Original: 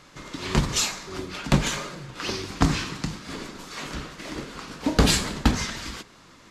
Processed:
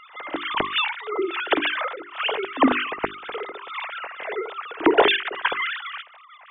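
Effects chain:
three sine waves on the formant tracks
mains-hum notches 50/100/150/200/250/300/350/400 Hz
backwards echo 59 ms −18 dB
level +2 dB

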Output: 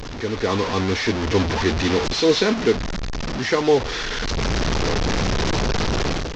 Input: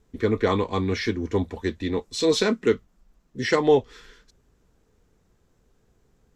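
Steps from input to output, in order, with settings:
linear delta modulator 32 kbit/s, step −21.5 dBFS
automatic gain control gain up to 12 dB
level −4.5 dB

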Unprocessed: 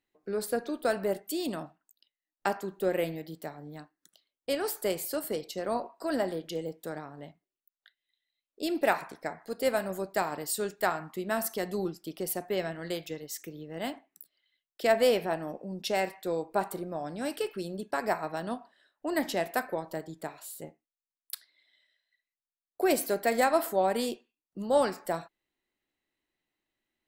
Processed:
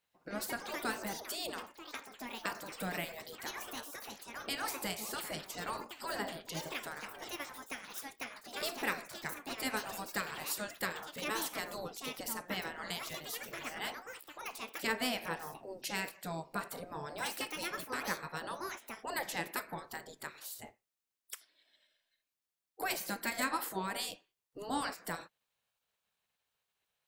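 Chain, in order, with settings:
gate on every frequency bin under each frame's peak −10 dB weak
downward compressor 1.5 to 1, threshold −47 dBFS, peak gain reduction 8 dB
delay with pitch and tempo change per echo 102 ms, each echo +5 semitones, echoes 3, each echo −6 dB
level +4.5 dB

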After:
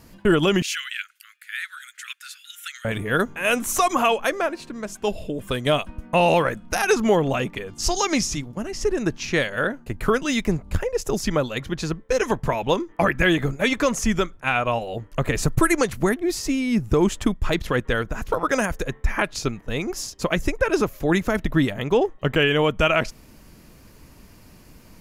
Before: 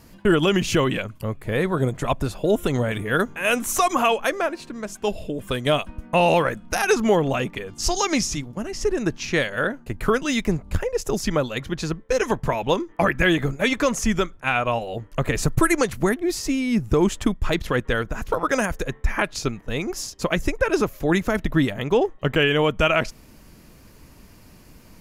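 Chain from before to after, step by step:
0:00.62–0:02.85: Butterworth high-pass 1,400 Hz 72 dB per octave

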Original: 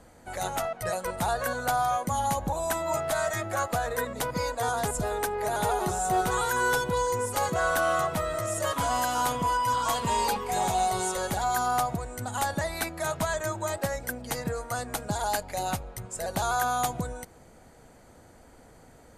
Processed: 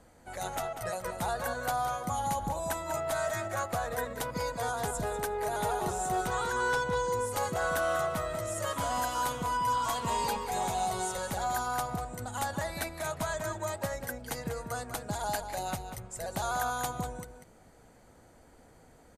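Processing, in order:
0:06.27–0:07.13: low-pass filter 7,400 Hz 12 dB per octave
slap from a distant wall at 33 metres, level −8 dB
level −5 dB

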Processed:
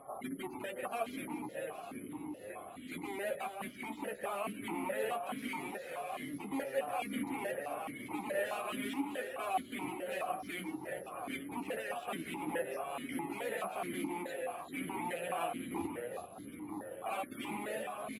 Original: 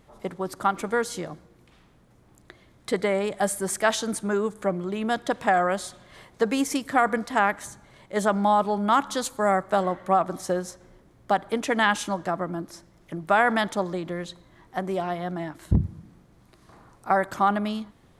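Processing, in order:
in parallel at 0 dB: brickwall limiter −18.5 dBFS, peak gain reduction 11.5 dB
on the sum: downward compressor 2.5 to 1, threshold −40 dBFS, peak gain reduction 18 dB
wrap-around overflow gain 33 dB
spectral peaks only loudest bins 64
flanger 0.11 Hz, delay 7.2 ms, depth 7.6 ms, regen +32%
multi-tap delay 365/389 ms −13.5/−8.5 dB
delay with pitch and tempo change per echo 171 ms, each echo −7 semitones, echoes 2, each echo −6 dB
high-frequency loss of the air 200 metres
bad sample-rate conversion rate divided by 4×, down none, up zero stuff
formant filter that steps through the vowels 4.7 Hz
level +17.5 dB

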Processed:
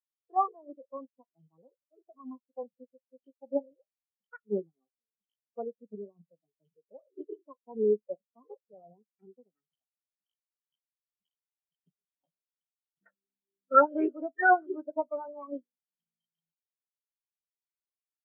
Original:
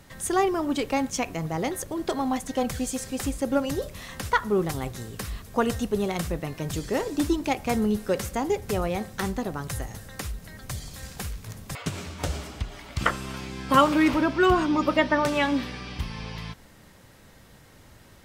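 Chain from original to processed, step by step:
loose part that buzzes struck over −30 dBFS, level −13 dBFS
treble cut that deepens with the level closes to 1,400 Hz, closed at −23 dBFS
Butterworth high-pass 160 Hz
formants moved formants +4 semitones
every bin expanded away from the loudest bin 4 to 1
level −2 dB

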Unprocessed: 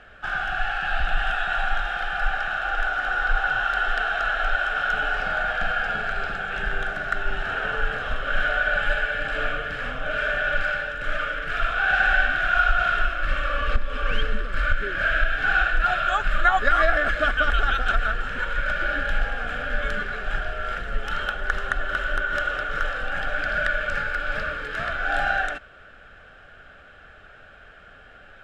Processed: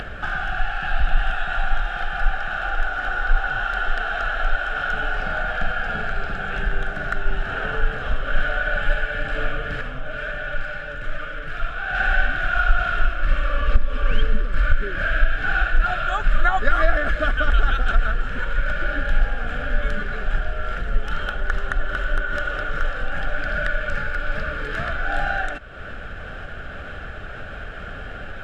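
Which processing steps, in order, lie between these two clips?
low-shelf EQ 370 Hz +9 dB
upward compression, threshold −17 dBFS
0:09.81–0:11.95: flanger 2 Hz, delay 5.7 ms, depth 2.7 ms, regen +69%
level −2.5 dB

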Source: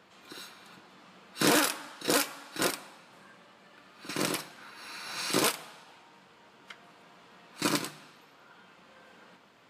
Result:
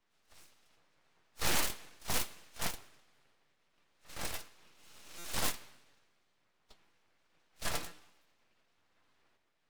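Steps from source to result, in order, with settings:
pitch-shifted copies added +3 semitones −10 dB
stiff-string resonator 76 Hz, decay 0.25 s, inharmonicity 0.008
full-wave rectification
buffer that repeats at 0:05.18, samples 256, times 10
multiband upward and downward expander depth 40%

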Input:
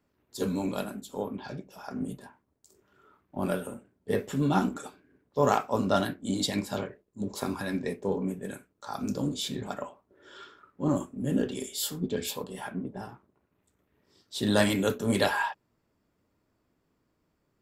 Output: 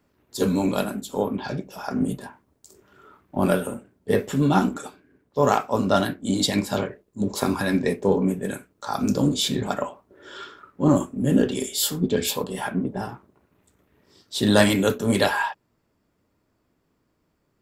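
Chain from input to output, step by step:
speech leveller within 3 dB 2 s
level +7 dB

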